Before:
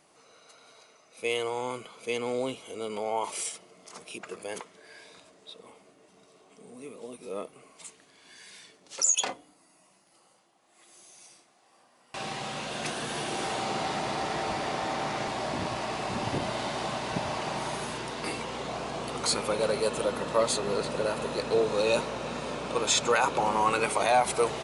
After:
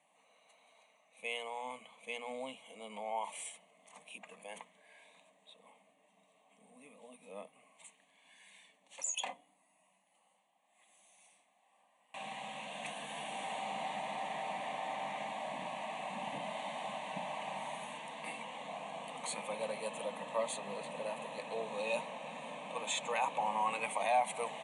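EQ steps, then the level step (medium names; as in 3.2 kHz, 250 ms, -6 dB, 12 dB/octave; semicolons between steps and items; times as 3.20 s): elliptic band-pass 190–9300 Hz; hum notches 60/120/180/240 Hz; static phaser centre 1.4 kHz, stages 6; -6.0 dB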